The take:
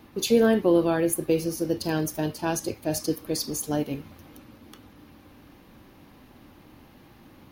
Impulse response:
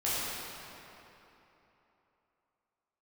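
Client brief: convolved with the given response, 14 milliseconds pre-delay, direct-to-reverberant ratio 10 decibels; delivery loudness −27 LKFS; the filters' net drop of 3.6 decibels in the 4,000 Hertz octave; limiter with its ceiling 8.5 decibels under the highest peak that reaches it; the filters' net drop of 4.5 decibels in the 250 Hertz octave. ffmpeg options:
-filter_complex "[0:a]equalizer=frequency=250:width_type=o:gain=-6.5,equalizer=frequency=4000:width_type=o:gain=-4.5,alimiter=limit=-21dB:level=0:latency=1,asplit=2[link_01][link_02];[1:a]atrim=start_sample=2205,adelay=14[link_03];[link_02][link_03]afir=irnorm=-1:irlink=0,volume=-19.5dB[link_04];[link_01][link_04]amix=inputs=2:normalize=0,volume=4dB"

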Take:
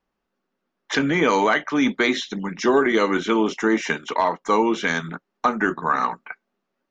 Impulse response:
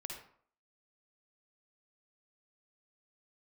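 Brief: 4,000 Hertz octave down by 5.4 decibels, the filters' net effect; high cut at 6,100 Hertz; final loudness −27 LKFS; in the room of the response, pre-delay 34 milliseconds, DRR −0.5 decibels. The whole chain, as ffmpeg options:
-filter_complex "[0:a]lowpass=6100,equalizer=frequency=4000:width_type=o:gain=-6.5,asplit=2[link_01][link_02];[1:a]atrim=start_sample=2205,adelay=34[link_03];[link_02][link_03]afir=irnorm=-1:irlink=0,volume=2.5dB[link_04];[link_01][link_04]amix=inputs=2:normalize=0,volume=-8dB"

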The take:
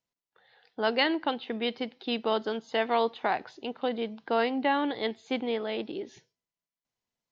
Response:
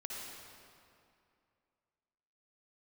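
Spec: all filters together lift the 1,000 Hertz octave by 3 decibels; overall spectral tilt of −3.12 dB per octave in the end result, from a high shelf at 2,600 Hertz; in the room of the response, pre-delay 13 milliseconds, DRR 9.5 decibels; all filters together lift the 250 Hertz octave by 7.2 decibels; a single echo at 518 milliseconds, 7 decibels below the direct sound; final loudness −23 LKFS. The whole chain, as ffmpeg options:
-filter_complex "[0:a]equalizer=frequency=250:width_type=o:gain=8,equalizer=frequency=1000:width_type=o:gain=4,highshelf=frequency=2600:gain=-4.5,aecho=1:1:518:0.447,asplit=2[link_01][link_02];[1:a]atrim=start_sample=2205,adelay=13[link_03];[link_02][link_03]afir=irnorm=-1:irlink=0,volume=-9dB[link_04];[link_01][link_04]amix=inputs=2:normalize=0,volume=2.5dB"

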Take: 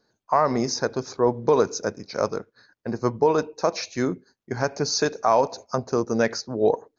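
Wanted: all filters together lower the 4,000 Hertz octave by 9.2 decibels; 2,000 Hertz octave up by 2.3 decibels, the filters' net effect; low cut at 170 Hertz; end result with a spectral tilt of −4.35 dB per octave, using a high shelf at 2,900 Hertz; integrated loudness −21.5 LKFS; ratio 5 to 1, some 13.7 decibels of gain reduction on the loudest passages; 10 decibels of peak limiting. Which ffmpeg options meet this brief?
ffmpeg -i in.wav -af "highpass=170,equalizer=frequency=2000:width_type=o:gain=7,highshelf=frequency=2900:gain=-8,equalizer=frequency=4000:width_type=o:gain=-5.5,acompressor=threshold=-30dB:ratio=5,volume=16.5dB,alimiter=limit=-8dB:level=0:latency=1" out.wav

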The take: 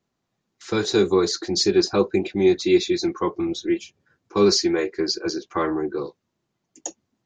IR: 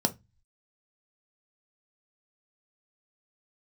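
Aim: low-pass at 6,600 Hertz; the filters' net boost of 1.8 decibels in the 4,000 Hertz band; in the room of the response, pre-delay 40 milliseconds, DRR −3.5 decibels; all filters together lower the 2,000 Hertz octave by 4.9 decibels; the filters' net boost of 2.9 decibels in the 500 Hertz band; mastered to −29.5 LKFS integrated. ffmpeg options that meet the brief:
-filter_complex "[0:a]lowpass=6600,equalizer=frequency=500:width_type=o:gain=4.5,equalizer=frequency=2000:width_type=o:gain=-8,equalizer=frequency=4000:width_type=o:gain=4.5,asplit=2[link_01][link_02];[1:a]atrim=start_sample=2205,adelay=40[link_03];[link_02][link_03]afir=irnorm=-1:irlink=0,volume=-4.5dB[link_04];[link_01][link_04]amix=inputs=2:normalize=0,volume=-18.5dB"

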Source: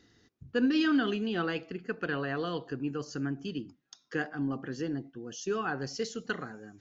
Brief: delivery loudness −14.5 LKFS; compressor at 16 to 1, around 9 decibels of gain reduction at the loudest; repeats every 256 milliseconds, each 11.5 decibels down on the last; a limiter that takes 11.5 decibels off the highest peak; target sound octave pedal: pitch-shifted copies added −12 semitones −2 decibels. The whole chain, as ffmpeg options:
ffmpeg -i in.wav -filter_complex "[0:a]acompressor=threshold=-31dB:ratio=16,alimiter=level_in=8dB:limit=-24dB:level=0:latency=1,volume=-8dB,aecho=1:1:256|512|768:0.266|0.0718|0.0194,asplit=2[link_01][link_02];[link_02]asetrate=22050,aresample=44100,atempo=2,volume=-2dB[link_03];[link_01][link_03]amix=inputs=2:normalize=0,volume=25dB" out.wav

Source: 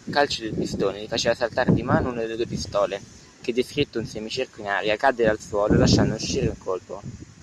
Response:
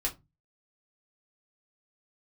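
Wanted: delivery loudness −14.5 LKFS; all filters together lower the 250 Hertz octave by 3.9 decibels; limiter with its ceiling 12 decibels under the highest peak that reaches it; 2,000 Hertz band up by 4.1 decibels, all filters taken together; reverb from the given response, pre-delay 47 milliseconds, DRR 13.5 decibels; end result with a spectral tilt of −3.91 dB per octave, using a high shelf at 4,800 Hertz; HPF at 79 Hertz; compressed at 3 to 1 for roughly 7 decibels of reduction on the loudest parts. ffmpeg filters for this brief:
-filter_complex "[0:a]highpass=79,equalizer=frequency=250:width_type=o:gain=-5.5,equalizer=frequency=2000:width_type=o:gain=5,highshelf=frequency=4800:gain=3,acompressor=threshold=-23dB:ratio=3,alimiter=limit=-20dB:level=0:latency=1,asplit=2[link_01][link_02];[1:a]atrim=start_sample=2205,adelay=47[link_03];[link_02][link_03]afir=irnorm=-1:irlink=0,volume=-18dB[link_04];[link_01][link_04]amix=inputs=2:normalize=0,volume=17dB"

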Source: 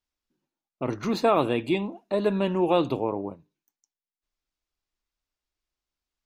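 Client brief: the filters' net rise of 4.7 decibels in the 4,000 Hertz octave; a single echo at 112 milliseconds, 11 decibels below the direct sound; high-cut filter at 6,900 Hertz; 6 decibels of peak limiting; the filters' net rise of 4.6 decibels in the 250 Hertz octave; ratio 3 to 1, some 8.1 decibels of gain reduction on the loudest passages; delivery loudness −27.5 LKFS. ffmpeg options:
ffmpeg -i in.wav -af "lowpass=6900,equalizer=frequency=250:width_type=o:gain=6.5,equalizer=frequency=4000:width_type=o:gain=6,acompressor=threshold=-26dB:ratio=3,alimiter=limit=-20.5dB:level=0:latency=1,aecho=1:1:112:0.282,volume=3.5dB" out.wav

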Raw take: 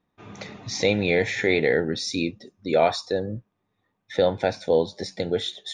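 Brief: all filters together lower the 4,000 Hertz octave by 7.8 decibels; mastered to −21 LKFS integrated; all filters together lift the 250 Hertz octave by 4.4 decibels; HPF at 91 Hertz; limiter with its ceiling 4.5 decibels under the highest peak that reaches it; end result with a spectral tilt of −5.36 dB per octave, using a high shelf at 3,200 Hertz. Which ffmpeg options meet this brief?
ffmpeg -i in.wav -af "highpass=91,equalizer=frequency=250:width_type=o:gain=6,highshelf=frequency=3200:gain=-4.5,equalizer=frequency=4000:width_type=o:gain=-6,volume=4.5dB,alimiter=limit=-7dB:level=0:latency=1" out.wav

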